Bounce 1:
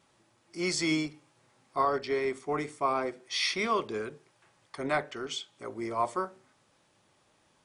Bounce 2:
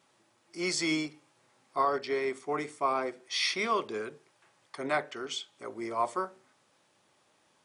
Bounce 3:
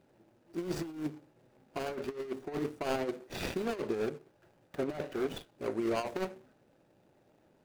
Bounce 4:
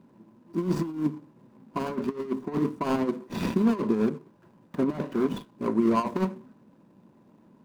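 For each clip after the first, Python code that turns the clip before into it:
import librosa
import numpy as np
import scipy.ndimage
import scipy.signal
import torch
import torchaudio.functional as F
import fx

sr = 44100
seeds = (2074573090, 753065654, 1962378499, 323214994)

y1 = fx.highpass(x, sr, hz=230.0, slope=6)
y2 = scipy.signal.medfilt(y1, 41)
y2 = fx.over_compress(y2, sr, threshold_db=-38.0, ratio=-0.5)
y2 = F.gain(torch.from_numpy(y2), 5.0).numpy()
y3 = fx.small_body(y2, sr, hz=(210.0, 1000.0), ring_ms=35, db=18)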